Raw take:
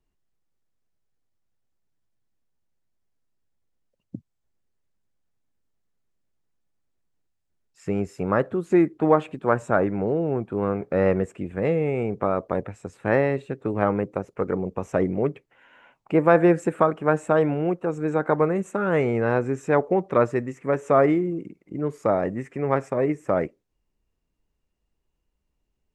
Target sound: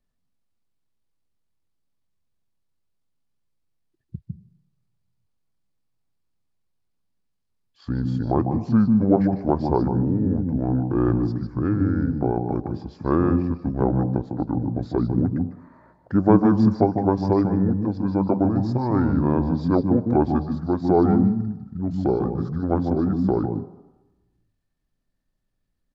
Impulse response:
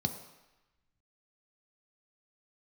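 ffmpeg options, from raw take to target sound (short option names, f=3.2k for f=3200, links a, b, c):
-filter_complex "[0:a]asetrate=27781,aresample=44100,atempo=1.5874,asplit=2[a][b];[1:a]atrim=start_sample=2205,adelay=150[c];[b][c]afir=irnorm=-1:irlink=0,volume=-13.5dB[d];[a][d]amix=inputs=2:normalize=0"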